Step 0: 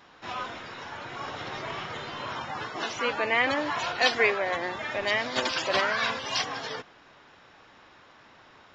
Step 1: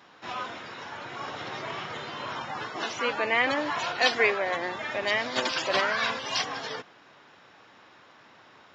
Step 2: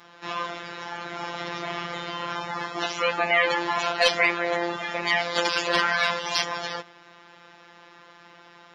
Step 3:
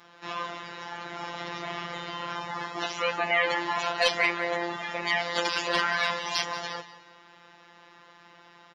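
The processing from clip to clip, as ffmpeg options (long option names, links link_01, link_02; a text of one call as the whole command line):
ffmpeg -i in.wav -af "highpass=110" out.wav
ffmpeg -i in.wav -af "afftfilt=real='hypot(re,im)*cos(PI*b)':imag='0':win_size=1024:overlap=0.75,acontrast=88" out.wav
ffmpeg -i in.wav -af "aecho=1:1:181|362|543:0.188|0.0546|0.0158,volume=-3.5dB" out.wav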